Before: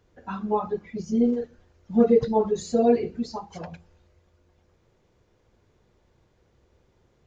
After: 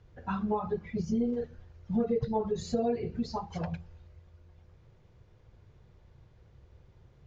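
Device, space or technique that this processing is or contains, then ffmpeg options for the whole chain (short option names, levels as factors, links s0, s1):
jukebox: -af "lowpass=5300,lowshelf=f=180:t=q:w=1.5:g=7.5,acompressor=threshold=0.0447:ratio=4"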